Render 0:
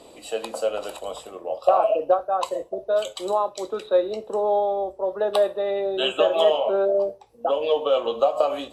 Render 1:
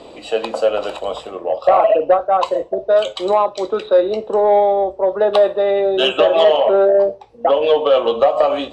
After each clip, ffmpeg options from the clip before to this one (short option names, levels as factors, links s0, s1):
-filter_complex "[0:a]asplit=2[s0][s1];[s1]alimiter=limit=0.211:level=0:latency=1:release=75,volume=0.841[s2];[s0][s2]amix=inputs=2:normalize=0,lowpass=4300,acontrast=39,volume=0.841"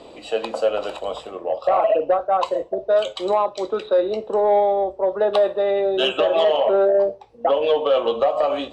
-af "alimiter=level_in=1.78:limit=0.891:release=50:level=0:latency=1,volume=0.355"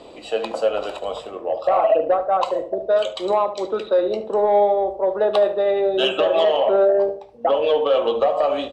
-filter_complex "[0:a]asplit=2[s0][s1];[s1]adelay=73,lowpass=f=1200:p=1,volume=0.355,asplit=2[s2][s3];[s3]adelay=73,lowpass=f=1200:p=1,volume=0.39,asplit=2[s4][s5];[s5]adelay=73,lowpass=f=1200:p=1,volume=0.39,asplit=2[s6][s7];[s7]adelay=73,lowpass=f=1200:p=1,volume=0.39[s8];[s0][s2][s4][s6][s8]amix=inputs=5:normalize=0"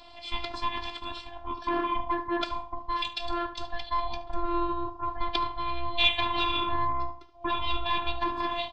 -af "highpass=f=210:w=0.5412,highpass=f=210:w=1.3066,equalizer=f=240:t=q:w=4:g=6,equalizer=f=620:t=q:w=4:g=-7,equalizer=f=930:t=q:w=4:g=-7,equalizer=f=3000:t=q:w=4:g=8,equalizer=f=4500:t=q:w=4:g=7,lowpass=f=6400:w=0.5412,lowpass=f=6400:w=1.3066,aeval=exprs='val(0)*sin(2*PI*430*n/s)':c=same,afftfilt=real='hypot(re,im)*cos(PI*b)':imag='0':win_size=512:overlap=0.75"